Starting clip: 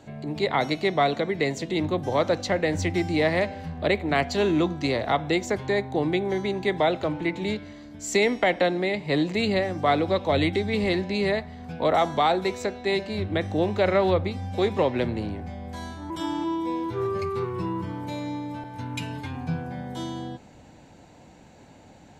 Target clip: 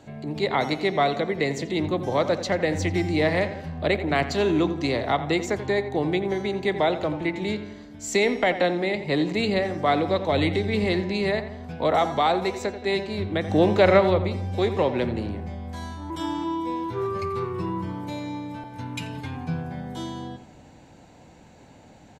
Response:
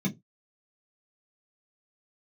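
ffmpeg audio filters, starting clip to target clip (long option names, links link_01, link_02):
-filter_complex "[0:a]asplit=3[link_01][link_02][link_03];[link_01]afade=type=out:start_time=13.48:duration=0.02[link_04];[link_02]acontrast=35,afade=type=in:start_time=13.48:duration=0.02,afade=type=out:start_time=13.99:duration=0.02[link_05];[link_03]afade=type=in:start_time=13.99:duration=0.02[link_06];[link_04][link_05][link_06]amix=inputs=3:normalize=0,asplit=2[link_07][link_08];[link_08]adelay=86,lowpass=frequency=2300:poles=1,volume=-11dB,asplit=2[link_09][link_10];[link_10]adelay=86,lowpass=frequency=2300:poles=1,volume=0.51,asplit=2[link_11][link_12];[link_12]adelay=86,lowpass=frequency=2300:poles=1,volume=0.51,asplit=2[link_13][link_14];[link_14]adelay=86,lowpass=frequency=2300:poles=1,volume=0.51,asplit=2[link_15][link_16];[link_16]adelay=86,lowpass=frequency=2300:poles=1,volume=0.51[link_17];[link_07][link_09][link_11][link_13][link_15][link_17]amix=inputs=6:normalize=0"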